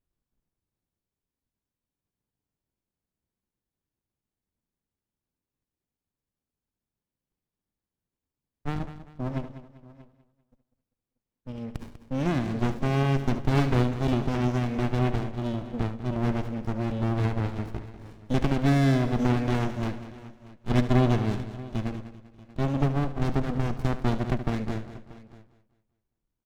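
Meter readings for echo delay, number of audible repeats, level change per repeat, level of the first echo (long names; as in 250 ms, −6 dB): 73 ms, 8, repeats not evenly spaced, −13.0 dB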